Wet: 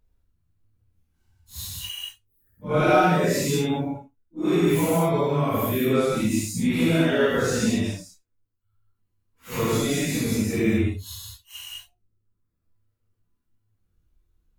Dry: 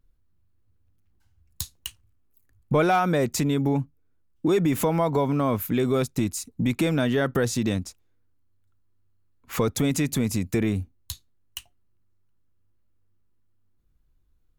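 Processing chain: phase randomisation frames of 200 ms; reverb removal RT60 1 s; gated-style reverb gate 240 ms flat, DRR -5.5 dB; dynamic bell 2.6 kHz, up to +4 dB, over -39 dBFS, Q 1.1; trim -3.5 dB

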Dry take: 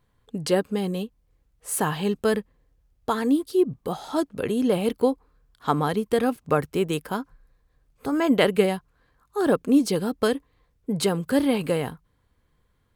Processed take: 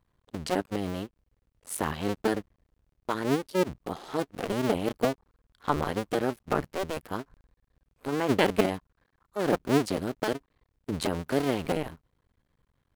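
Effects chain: cycle switcher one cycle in 2, muted; treble shelf 6.2 kHz -4.5 dB; trim -2.5 dB

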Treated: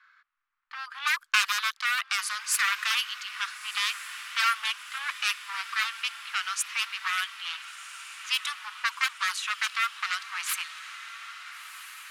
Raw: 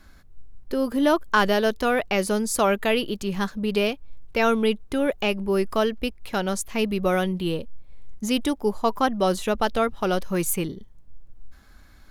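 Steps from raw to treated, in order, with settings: one-sided wavefolder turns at -23 dBFS; elliptic high-pass 1.2 kHz, stop band 60 dB; level-controlled noise filter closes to 1.9 kHz, open at -26.5 dBFS; on a send: echo that smears into a reverb 1397 ms, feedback 59%, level -13 dB; on the sum: trim +3.5 dB

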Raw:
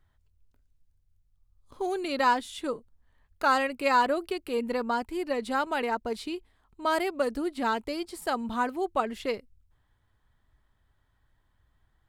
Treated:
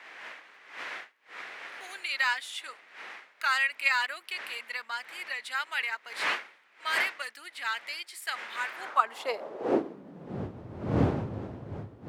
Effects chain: wind noise 420 Hz -28 dBFS; high-pass sweep 2 kHz -> 98 Hz, 8.69–10.52 s

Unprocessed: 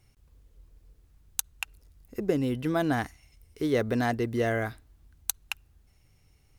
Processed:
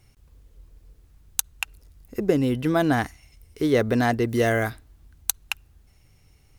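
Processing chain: 4.29–4.70 s: treble shelf 4.7 kHz +8 dB; trim +5.5 dB

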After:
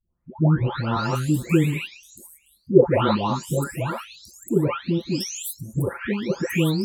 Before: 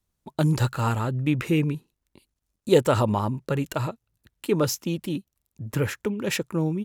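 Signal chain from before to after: delay that grows with frequency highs late, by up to 767 ms; dynamic bell 390 Hz, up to +4 dB, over -42 dBFS, Q 6.9; trim +4.5 dB

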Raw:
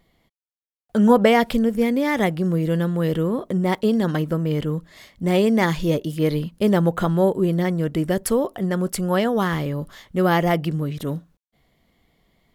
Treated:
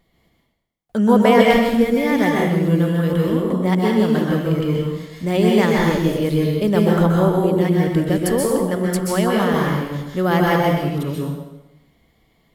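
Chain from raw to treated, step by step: plate-style reverb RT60 0.97 s, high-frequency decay 0.9×, pre-delay 115 ms, DRR -2.5 dB; trim -1 dB

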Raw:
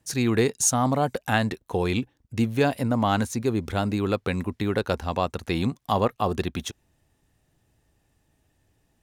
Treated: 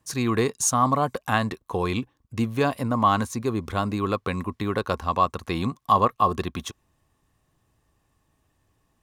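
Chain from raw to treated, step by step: peaking EQ 1.1 kHz +15 dB 0.23 oct; trim -1.5 dB

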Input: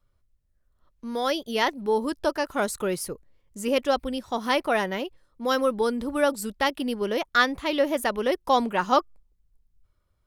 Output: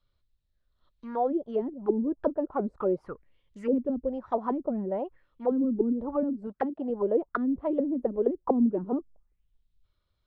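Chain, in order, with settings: 6.47–6.90 s: high-pass 92 Hz 12 dB/octave; touch-sensitive low-pass 250–4000 Hz down, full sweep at -20 dBFS; trim -5.5 dB

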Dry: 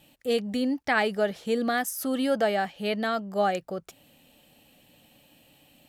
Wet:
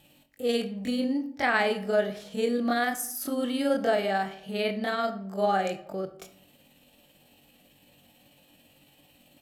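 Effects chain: granular stretch 1.6×, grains 111 ms; on a send: reverberation RT60 0.70 s, pre-delay 35 ms, DRR 11.5 dB

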